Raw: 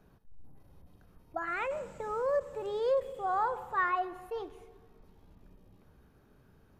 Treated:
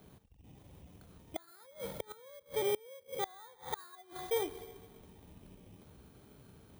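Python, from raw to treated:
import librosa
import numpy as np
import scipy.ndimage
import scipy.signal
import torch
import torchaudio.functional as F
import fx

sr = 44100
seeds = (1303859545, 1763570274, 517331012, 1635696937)

y = fx.bit_reversed(x, sr, seeds[0], block=16)
y = fx.gate_flip(y, sr, shuts_db=-28.0, range_db=-29)
y = scipy.signal.sosfilt(scipy.signal.butter(2, 60.0, 'highpass', fs=sr, output='sos'), y)
y = y * librosa.db_to_amplitude(5.0)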